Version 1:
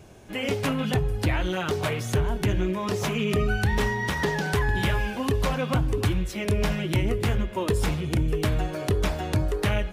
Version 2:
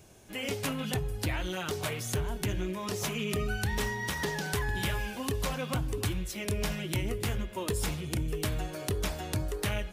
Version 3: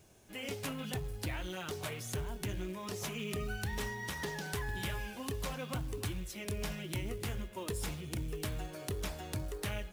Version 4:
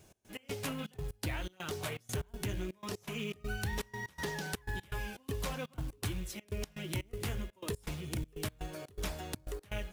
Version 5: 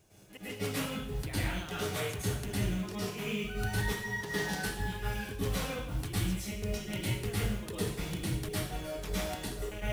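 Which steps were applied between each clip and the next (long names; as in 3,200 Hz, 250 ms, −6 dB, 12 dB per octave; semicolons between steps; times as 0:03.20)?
high-shelf EQ 4,200 Hz +11.5 dB; level −8 dB
log-companded quantiser 6 bits; level −6.5 dB
gate pattern "x.x.xxx.x.xx.xx" 122 BPM −24 dB; level +1.5 dB
dense smooth reverb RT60 0.64 s, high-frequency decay 0.95×, pre-delay 95 ms, DRR −9.5 dB; level −5.5 dB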